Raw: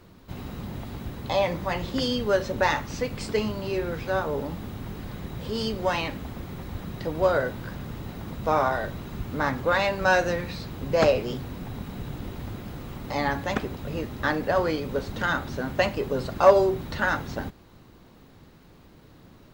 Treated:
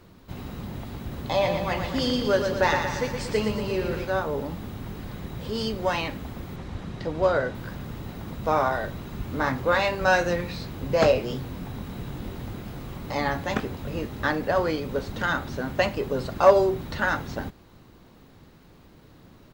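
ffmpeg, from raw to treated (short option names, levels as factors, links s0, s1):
-filter_complex "[0:a]asplit=3[s0][s1][s2];[s0]afade=t=out:st=1.1:d=0.02[s3];[s1]aecho=1:1:117|234|351|468|585|702|819|936:0.501|0.291|0.169|0.0978|0.0567|0.0329|0.0191|0.0111,afade=t=in:st=1.1:d=0.02,afade=t=out:st=4.04:d=0.02[s4];[s2]afade=t=in:st=4.04:d=0.02[s5];[s3][s4][s5]amix=inputs=3:normalize=0,asettb=1/sr,asplit=3[s6][s7][s8];[s6]atrim=end=6.564[s9];[s7]atrim=start=6.56:end=7.55,asetpts=PTS-STARTPTS,afade=t=in:d=0.004:c=qsin,afade=t=out:st=0.986:d=0.004:c=qsin,lowpass=7800[s10];[s8]atrim=start=7.546[s11];[s9][s10]acrossfade=d=0.004:c1=hsin:c2=qsin[s12];[s12][s11]acrossfade=d=0.004:c1=qsin:c2=hsin,asettb=1/sr,asplit=3[s13][s14][s15];[s13]atrim=end=9.184[s16];[s14]atrim=start=9.18:end=14.27,asetpts=PTS-STARTPTS,afade=t=in:d=0.004:c=qsin,afade=t=out:st=5.086:d=0.004:c=qsin,asplit=2[s17][s18];[s18]adelay=23,volume=0.376[s19];[s17][s19]amix=inputs=2:normalize=0,atrim=end_sample=224469[s20];[s15]atrim=start=14.266[s21];[s16][s20]acrossfade=d=0.004:c1=hsin:c2=qsin[s22];[s22][s21]acrossfade=d=0.004:c1=qsin:c2=hsin"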